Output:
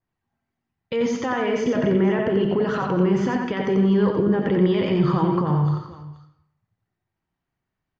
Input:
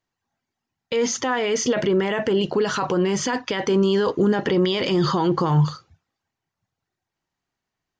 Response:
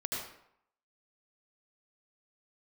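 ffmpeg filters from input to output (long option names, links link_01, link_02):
-filter_complex "[0:a]bass=frequency=250:gain=7,treble=frequency=4000:gain=-13,alimiter=limit=-10.5dB:level=0:latency=1:release=144,aecho=1:1:89|254|479:0.596|0.15|0.119,asplit=2[link_01][link_02];[1:a]atrim=start_sample=2205[link_03];[link_02][link_03]afir=irnorm=-1:irlink=0,volume=-8.5dB[link_04];[link_01][link_04]amix=inputs=2:normalize=0,adynamicequalizer=threshold=0.0141:dfrequency=2800:dqfactor=0.7:tfrequency=2800:tqfactor=0.7:attack=5:release=100:ratio=0.375:range=3:mode=cutabove:tftype=highshelf,volume=-5dB"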